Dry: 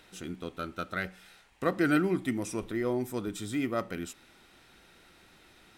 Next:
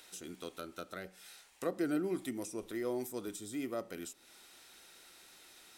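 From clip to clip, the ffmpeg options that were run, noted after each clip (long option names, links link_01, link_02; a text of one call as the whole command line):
ffmpeg -i in.wav -filter_complex "[0:a]bass=frequency=250:gain=-12,treble=frequency=4000:gain=12,acrossover=split=680[link_01][link_02];[link_02]acompressor=threshold=-42dB:ratio=12[link_03];[link_01][link_03]amix=inputs=2:normalize=0,volume=-3dB" out.wav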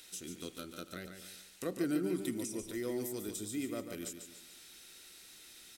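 ffmpeg -i in.wav -filter_complex "[0:a]equalizer=frequency=840:width_type=o:width=2.1:gain=-11,asplit=2[link_01][link_02];[link_02]aecho=0:1:144|288|432|576|720:0.422|0.177|0.0744|0.0312|0.0131[link_03];[link_01][link_03]amix=inputs=2:normalize=0,volume=4dB" out.wav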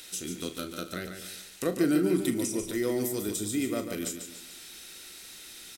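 ffmpeg -i in.wav -filter_complex "[0:a]asplit=2[link_01][link_02];[link_02]adelay=39,volume=-11dB[link_03];[link_01][link_03]amix=inputs=2:normalize=0,volume=8.5dB" out.wav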